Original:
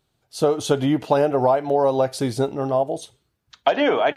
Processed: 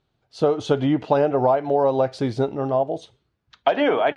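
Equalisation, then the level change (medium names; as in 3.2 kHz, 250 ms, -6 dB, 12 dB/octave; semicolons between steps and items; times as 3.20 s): dynamic bell 9.8 kHz, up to +4 dB, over -55 dBFS, Q 5; distance through air 150 m; 0.0 dB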